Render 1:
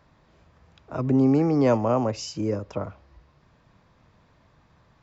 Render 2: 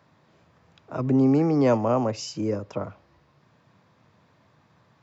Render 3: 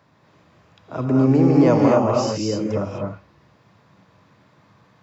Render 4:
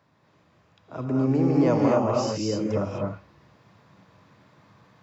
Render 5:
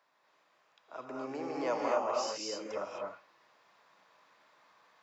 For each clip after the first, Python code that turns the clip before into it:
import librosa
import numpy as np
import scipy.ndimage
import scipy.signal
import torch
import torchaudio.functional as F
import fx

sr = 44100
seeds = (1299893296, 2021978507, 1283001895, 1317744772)

y1 = scipy.signal.sosfilt(scipy.signal.butter(4, 98.0, 'highpass', fs=sr, output='sos'), x)
y2 = fx.rev_gated(y1, sr, seeds[0], gate_ms=280, shape='rising', drr_db=-1.5)
y2 = y2 * 10.0 ** (2.0 / 20.0)
y3 = fx.rider(y2, sr, range_db=4, speed_s=2.0)
y3 = y3 * 10.0 ** (-5.0 / 20.0)
y4 = scipy.signal.sosfilt(scipy.signal.butter(2, 680.0, 'highpass', fs=sr, output='sos'), y3)
y4 = y4 * 10.0 ** (-4.0 / 20.0)